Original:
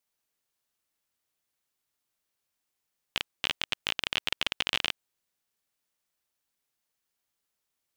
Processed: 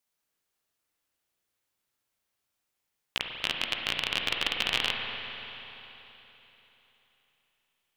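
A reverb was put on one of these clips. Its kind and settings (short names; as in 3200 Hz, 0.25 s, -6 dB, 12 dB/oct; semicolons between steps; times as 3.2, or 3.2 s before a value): spring tank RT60 3.6 s, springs 34/48 ms, chirp 40 ms, DRR 1 dB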